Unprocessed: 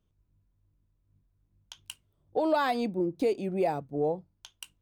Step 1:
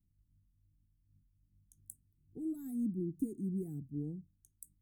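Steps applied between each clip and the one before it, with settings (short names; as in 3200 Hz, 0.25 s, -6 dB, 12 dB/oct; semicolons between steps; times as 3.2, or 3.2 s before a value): inverse Chebyshev band-stop 530–5000 Hz, stop band 40 dB; gain -1.5 dB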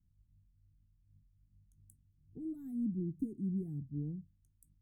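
tone controls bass +10 dB, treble -9 dB; gain -6 dB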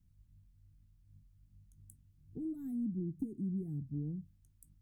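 compressor 2:1, threshold -44 dBFS, peak gain reduction 7.5 dB; gain +5 dB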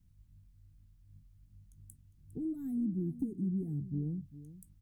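echo 0.405 s -15 dB; gain +3 dB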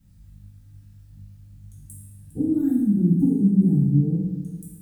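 reverb RT60 1.1 s, pre-delay 3 ms, DRR -7.5 dB; gain +7.5 dB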